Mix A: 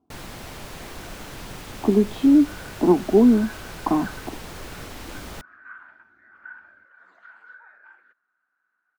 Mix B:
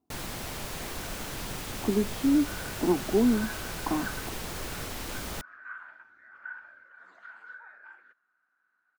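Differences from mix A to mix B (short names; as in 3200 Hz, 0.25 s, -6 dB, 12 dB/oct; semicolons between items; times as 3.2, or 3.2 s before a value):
speech -8.5 dB; master: add high shelf 5500 Hz +6 dB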